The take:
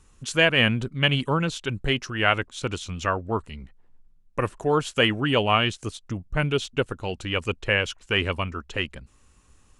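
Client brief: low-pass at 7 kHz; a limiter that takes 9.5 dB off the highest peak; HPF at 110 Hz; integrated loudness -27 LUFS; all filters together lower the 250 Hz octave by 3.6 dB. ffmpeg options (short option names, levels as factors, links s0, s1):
-af "highpass=110,lowpass=7000,equalizer=f=250:t=o:g=-4.5,volume=1.19,alimiter=limit=0.266:level=0:latency=1"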